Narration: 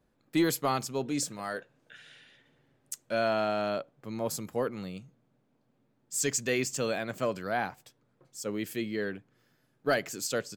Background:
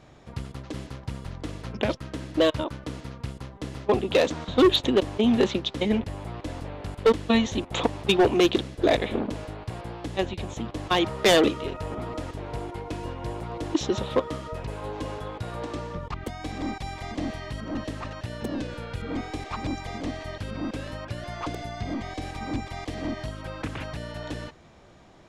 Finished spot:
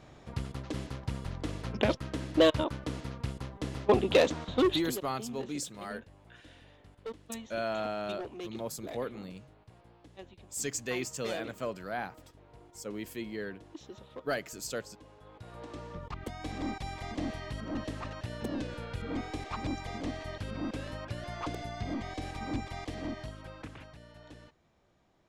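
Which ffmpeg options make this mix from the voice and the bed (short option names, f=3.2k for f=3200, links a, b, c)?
-filter_complex "[0:a]adelay=4400,volume=-5.5dB[a];[1:a]volume=16dB,afade=t=out:st=4.1:d=0.93:silence=0.0944061,afade=t=in:st=15.16:d=1.36:silence=0.133352,afade=t=out:st=22.73:d=1.21:silence=0.237137[b];[a][b]amix=inputs=2:normalize=0"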